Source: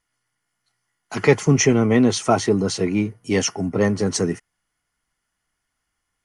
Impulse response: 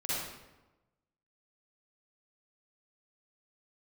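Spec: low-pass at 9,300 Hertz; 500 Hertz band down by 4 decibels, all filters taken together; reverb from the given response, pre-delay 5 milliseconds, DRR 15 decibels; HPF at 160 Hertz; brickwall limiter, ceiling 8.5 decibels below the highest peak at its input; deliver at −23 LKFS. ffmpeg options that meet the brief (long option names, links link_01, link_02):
-filter_complex "[0:a]highpass=160,lowpass=9300,equalizer=frequency=500:width_type=o:gain=-5,alimiter=limit=-13.5dB:level=0:latency=1,asplit=2[link_01][link_02];[1:a]atrim=start_sample=2205,adelay=5[link_03];[link_02][link_03]afir=irnorm=-1:irlink=0,volume=-20.5dB[link_04];[link_01][link_04]amix=inputs=2:normalize=0,volume=1dB"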